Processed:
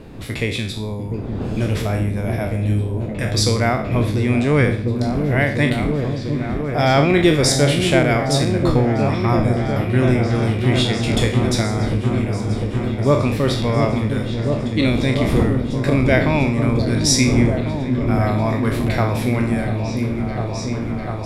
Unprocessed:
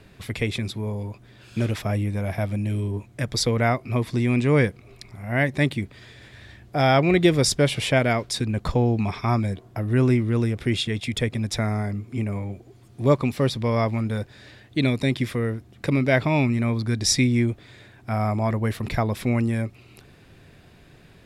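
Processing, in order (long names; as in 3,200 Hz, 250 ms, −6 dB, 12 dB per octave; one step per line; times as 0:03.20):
peak hold with a decay on every bin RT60 0.50 s
wind on the microphone 270 Hz −33 dBFS
echo whose low-pass opens from repeat to repeat 698 ms, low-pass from 400 Hz, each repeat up 1 octave, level −3 dB
level +2 dB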